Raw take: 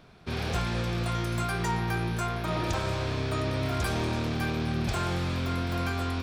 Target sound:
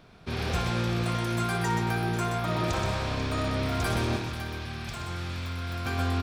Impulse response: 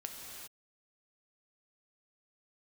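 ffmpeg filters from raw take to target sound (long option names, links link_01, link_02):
-filter_complex "[0:a]asettb=1/sr,asplit=3[link_01][link_02][link_03];[link_01]atrim=end=4.164[link_04];[link_02]atrim=start=4.16:end=5.86,asetpts=PTS-STARTPTS,afade=type=in:duration=0.004:curve=qsin,afade=type=out:start_time=1.696:duration=0.004:curve=qsin,acrossover=split=140|970[link_05][link_06][link_07];[link_05]acompressor=threshold=-38dB:ratio=4[link_08];[link_06]acompressor=threshold=-46dB:ratio=4[link_09];[link_07]acompressor=threshold=-40dB:ratio=4[link_10];[link_08][link_09][link_10]amix=inputs=3:normalize=0[link_11];[link_03]atrim=start=5.856[link_12];[link_04][link_11]acrossfade=duration=0.004:curve1=hsin:curve2=qsin[link_13];[link_13][link_12]acrossfade=duration=0.004:curve1=qsin:curve2=hsin,aecho=1:1:60|126|491:0.299|0.531|0.211"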